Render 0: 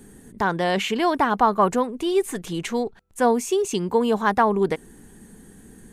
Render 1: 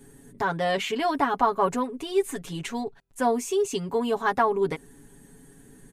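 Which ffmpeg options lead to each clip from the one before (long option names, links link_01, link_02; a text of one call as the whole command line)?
ffmpeg -i in.wav -af "aecho=1:1:7.2:0.86,volume=-6dB" out.wav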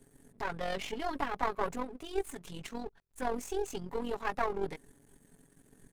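ffmpeg -i in.wav -af "aeval=exprs='if(lt(val(0),0),0.251*val(0),val(0))':channel_layout=same,tremolo=f=44:d=0.571,volume=-4.5dB" out.wav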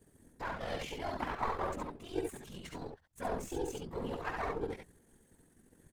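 ffmpeg -i in.wav -filter_complex "[0:a]afftfilt=real='hypot(re,im)*cos(2*PI*random(0))':imag='hypot(re,im)*sin(2*PI*random(1))':win_size=512:overlap=0.75,asplit=2[link_01][link_02];[link_02]aecho=0:1:57|70:0.251|0.631[link_03];[link_01][link_03]amix=inputs=2:normalize=0,volume=1.5dB" out.wav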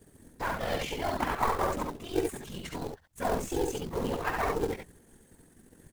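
ffmpeg -i in.wav -af "acrusher=bits=4:mode=log:mix=0:aa=0.000001,volume=7dB" out.wav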